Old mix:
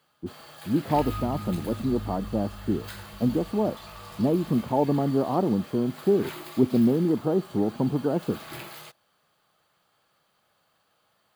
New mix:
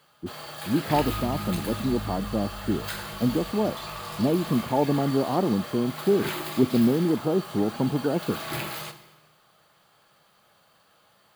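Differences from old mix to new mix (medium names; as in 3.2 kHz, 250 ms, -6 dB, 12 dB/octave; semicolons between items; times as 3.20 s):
first sound +6.0 dB; reverb: on, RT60 1.2 s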